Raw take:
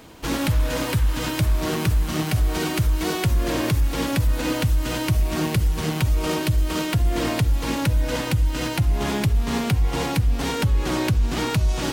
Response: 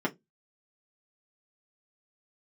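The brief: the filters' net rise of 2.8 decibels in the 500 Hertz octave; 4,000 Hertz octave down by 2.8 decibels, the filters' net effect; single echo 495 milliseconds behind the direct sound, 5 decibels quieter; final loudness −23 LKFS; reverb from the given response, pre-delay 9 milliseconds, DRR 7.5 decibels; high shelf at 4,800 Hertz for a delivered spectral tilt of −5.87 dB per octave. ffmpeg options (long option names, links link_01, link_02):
-filter_complex "[0:a]equalizer=frequency=500:width_type=o:gain=3.5,equalizer=frequency=4000:width_type=o:gain=-6,highshelf=frequency=4800:gain=4.5,aecho=1:1:495:0.562,asplit=2[link_01][link_02];[1:a]atrim=start_sample=2205,adelay=9[link_03];[link_02][link_03]afir=irnorm=-1:irlink=0,volume=-16dB[link_04];[link_01][link_04]amix=inputs=2:normalize=0,volume=-3dB"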